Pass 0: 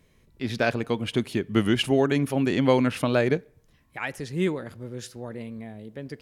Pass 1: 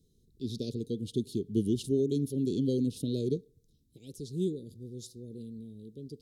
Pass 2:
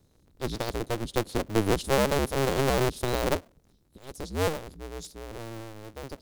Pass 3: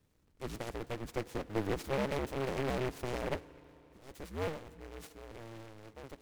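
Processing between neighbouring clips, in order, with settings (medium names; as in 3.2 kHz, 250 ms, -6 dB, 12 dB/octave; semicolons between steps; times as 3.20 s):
Chebyshev band-stop 440–3700 Hz, order 4; trim -5.5 dB
cycle switcher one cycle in 2, inverted; trim +4 dB
CVSD coder 64 kbps; FDN reverb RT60 3.8 s, high-frequency decay 0.6×, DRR 18.5 dB; delay time shaken by noise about 1.3 kHz, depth 0.095 ms; trim -9 dB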